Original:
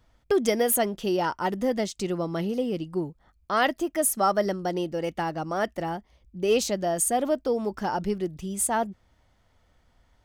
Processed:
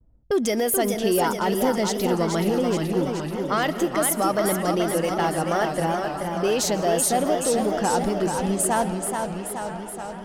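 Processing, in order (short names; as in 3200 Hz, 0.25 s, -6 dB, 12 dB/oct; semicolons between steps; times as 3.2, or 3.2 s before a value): gate with hold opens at -59 dBFS; in parallel at -12 dB: hard clip -26 dBFS, distortion -7 dB; on the sum: low-pass opened by the level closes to 310 Hz, open at -24 dBFS; high shelf 6100 Hz +6.5 dB; band-limited delay 0.958 s, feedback 72%, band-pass 1500 Hz, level -16 dB; on a send at -18.5 dB: reverb RT60 1.6 s, pre-delay 0.1 s; on the sum: limiter -17.5 dBFS, peak gain reduction 11 dB; warbling echo 0.429 s, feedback 66%, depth 112 cents, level -5.5 dB; gain +3 dB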